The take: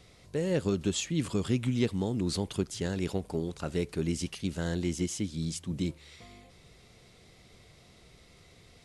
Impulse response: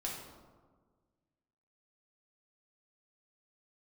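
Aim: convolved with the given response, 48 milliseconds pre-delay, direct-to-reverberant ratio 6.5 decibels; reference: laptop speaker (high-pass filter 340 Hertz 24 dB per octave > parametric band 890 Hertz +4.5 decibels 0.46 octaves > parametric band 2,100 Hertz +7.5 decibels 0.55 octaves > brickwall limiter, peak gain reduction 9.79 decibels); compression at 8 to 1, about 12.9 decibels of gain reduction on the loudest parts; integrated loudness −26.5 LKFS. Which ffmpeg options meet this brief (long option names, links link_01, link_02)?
-filter_complex "[0:a]acompressor=threshold=-37dB:ratio=8,asplit=2[link_01][link_02];[1:a]atrim=start_sample=2205,adelay=48[link_03];[link_02][link_03]afir=irnorm=-1:irlink=0,volume=-7.5dB[link_04];[link_01][link_04]amix=inputs=2:normalize=0,highpass=frequency=340:width=0.5412,highpass=frequency=340:width=1.3066,equalizer=frequency=890:width_type=o:width=0.46:gain=4.5,equalizer=frequency=2100:width_type=o:width=0.55:gain=7.5,volume=21dB,alimiter=limit=-15dB:level=0:latency=1"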